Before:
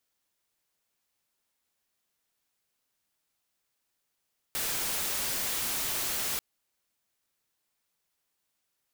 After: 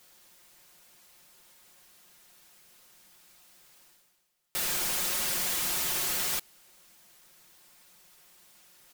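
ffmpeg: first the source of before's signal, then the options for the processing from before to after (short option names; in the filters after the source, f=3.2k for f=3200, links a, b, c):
-f lavfi -i "anoisesrc=c=white:a=0.0461:d=1.84:r=44100:seed=1"
-af "aecho=1:1:5.6:0.65,areverse,acompressor=mode=upward:threshold=-41dB:ratio=2.5,areverse"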